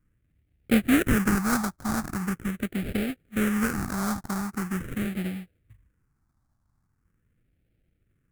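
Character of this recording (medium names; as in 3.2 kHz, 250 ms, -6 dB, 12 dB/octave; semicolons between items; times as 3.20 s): aliases and images of a low sample rate 1 kHz, jitter 20%; phasing stages 4, 0.42 Hz, lowest notch 460–1000 Hz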